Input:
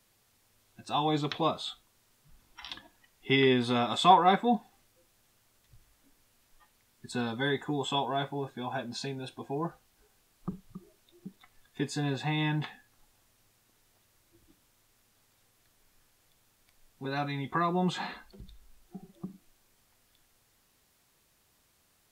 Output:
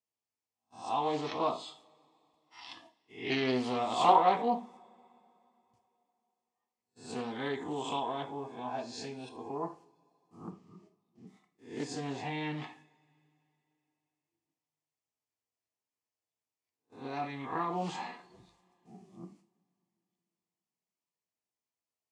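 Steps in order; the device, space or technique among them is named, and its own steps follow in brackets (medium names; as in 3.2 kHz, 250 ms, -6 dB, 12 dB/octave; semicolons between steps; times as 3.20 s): reverse spectral sustain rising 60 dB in 0.48 s; 10.50–11.27 s: low-pass 5.4 kHz 12 dB/octave; gate -51 dBFS, range -23 dB; two-slope reverb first 0.36 s, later 3.1 s, from -28 dB, DRR 4.5 dB; full-range speaker at full volume (loudspeaker Doppler distortion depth 0.28 ms; cabinet simulation 170–8500 Hz, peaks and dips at 190 Hz -3 dB, 870 Hz +3 dB, 1.5 kHz -10 dB, 3.7 kHz -9 dB); trim -5.5 dB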